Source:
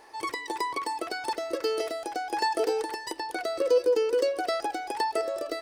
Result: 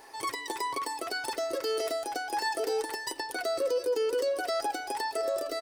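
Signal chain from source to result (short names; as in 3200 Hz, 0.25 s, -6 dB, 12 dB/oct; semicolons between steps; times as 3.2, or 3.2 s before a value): high shelf 7800 Hz +9.5 dB; comb 7.4 ms, depth 39%; limiter -22 dBFS, peak gain reduction 8 dB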